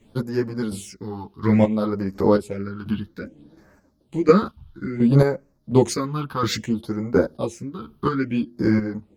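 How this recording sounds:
phaser sweep stages 6, 0.6 Hz, lowest notch 520–3,300 Hz
chopped level 1.4 Hz, depth 65%, duty 30%
a shimmering, thickened sound

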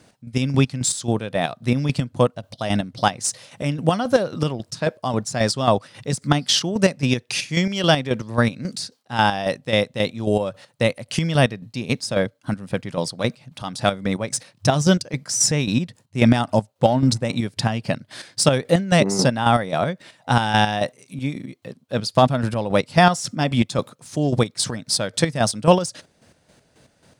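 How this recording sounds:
chopped level 3.7 Hz, depth 60%, duty 40%

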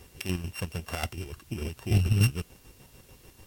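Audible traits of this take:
a buzz of ramps at a fixed pitch in blocks of 16 samples
chopped level 6.8 Hz, depth 60%, duty 45%
a quantiser's noise floor 10 bits, dither triangular
Ogg Vorbis

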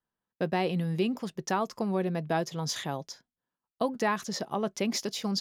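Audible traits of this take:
background noise floor −92 dBFS
spectral slope −5.0 dB per octave

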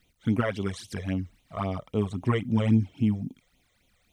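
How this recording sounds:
a quantiser's noise floor 12 bits, dither none
phaser sweep stages 12, 3.7 Hz, lowest notch 250–1,700 Hz

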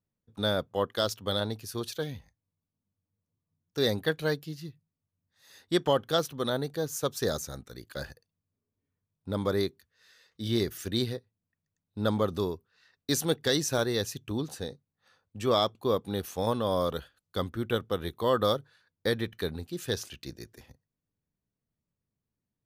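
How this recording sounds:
background noise floor −88 dBFS
spectral slope −4.5 dB per octave

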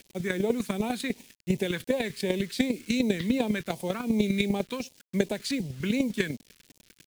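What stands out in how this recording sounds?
chopped level 10 Hz, depth 60%, duty 10%
a quantiser's noise floor 10 bits, dither none
phaser sweep stages 2, 2.7 Hz, lowest notch 700–1,400 Hz

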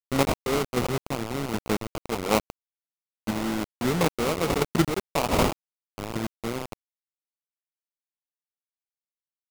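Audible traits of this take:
aliases and images of a low sample rate 1,700 Hz, jitter 20%
chopped level 1.3 Hz, depth 60%, duty 30%
a quantiser's noise floor 6 bits, dither none

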